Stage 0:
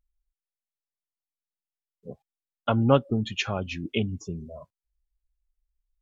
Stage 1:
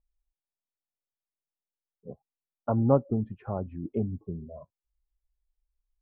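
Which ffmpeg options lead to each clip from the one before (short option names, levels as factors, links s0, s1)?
-af "lowpass=f=1000:w=0.5412,lowpass=f=1000:w=1.3066,volume=0.794"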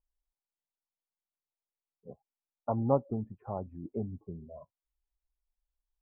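-af "lowpass=f=940:t=q:w=2.1,volume=0.447"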